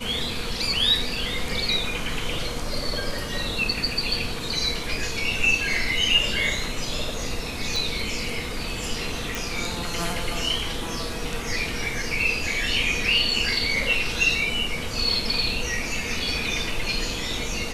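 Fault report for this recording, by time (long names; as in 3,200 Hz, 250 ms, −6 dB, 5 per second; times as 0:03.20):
0:07.76: click
0:09.35: click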